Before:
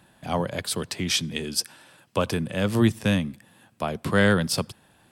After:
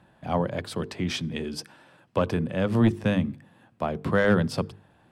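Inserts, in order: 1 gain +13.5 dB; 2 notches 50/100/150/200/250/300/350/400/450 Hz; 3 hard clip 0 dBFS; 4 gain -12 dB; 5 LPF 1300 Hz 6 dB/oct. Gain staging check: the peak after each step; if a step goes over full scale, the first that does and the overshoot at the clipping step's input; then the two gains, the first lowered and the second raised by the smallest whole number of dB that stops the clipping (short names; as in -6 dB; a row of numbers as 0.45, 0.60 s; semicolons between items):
+5.5, +6.0, 0.0, -12.0, -12.0 dBFS; step 1, 6.0 dB; step 1 +7.5 dB, step 4 -6 dB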